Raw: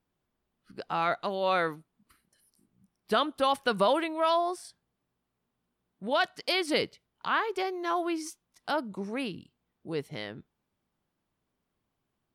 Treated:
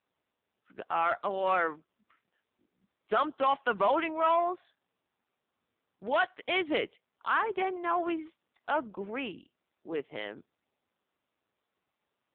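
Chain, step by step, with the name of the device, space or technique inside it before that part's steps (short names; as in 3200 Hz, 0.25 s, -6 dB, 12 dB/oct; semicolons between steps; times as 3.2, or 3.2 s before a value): dynamic EQ 520 Hz, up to -3 dB, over -39 dBFS, Q 3.9; telephone (BPF 330–3300 Hz; soft clip -20 dBFS, distortion -17 dB; gain +3 dB; AMR-NB 5.9 kbps 8000 Hz)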